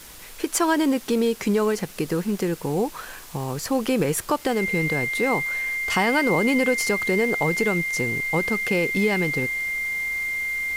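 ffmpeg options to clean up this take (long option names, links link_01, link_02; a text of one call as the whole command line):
ffmpeg -i in.wav -af "adeclick=threshold=4,bandreject=frequency=2100:width=30,afwtdn=0.0071" out.wav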